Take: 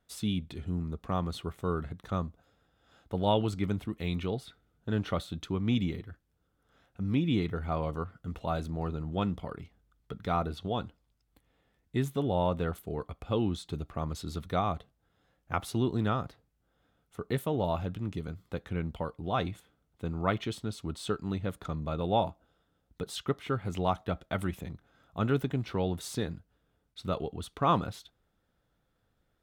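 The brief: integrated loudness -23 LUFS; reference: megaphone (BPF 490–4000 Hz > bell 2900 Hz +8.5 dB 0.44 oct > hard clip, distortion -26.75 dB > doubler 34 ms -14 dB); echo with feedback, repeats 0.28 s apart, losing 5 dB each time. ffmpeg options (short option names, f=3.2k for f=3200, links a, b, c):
-filter_complex "[0:a]highpass=490,lowpass=4k,equalizer=f=2.9k:t=o:w=0.44:g=8.5,aecho=1:1:280|560|840|1120|1400|1680|1960:0.562|0.315|0.176|0.0988|0.0553|0.031|0.0173,asoftclip=type=hard:threshold=-17.5dB,asplit=2[a][b];[b]adelay=34,volume=-14dB[c];[a][c]amix=inputs=2:normalize=0,volume=13.5dB"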